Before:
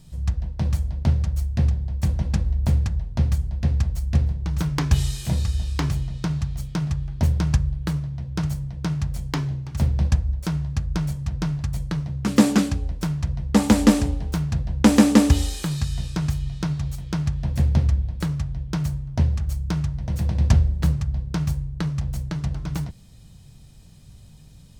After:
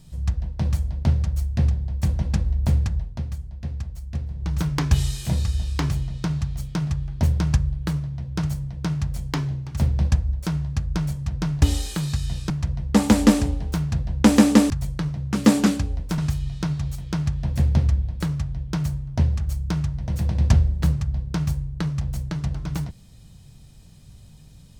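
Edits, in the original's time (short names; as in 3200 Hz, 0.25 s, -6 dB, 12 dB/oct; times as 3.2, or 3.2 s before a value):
3.02–4.47 dip -9 dB, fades 0.19 s
11.62–13.1 swap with 15.3–16.18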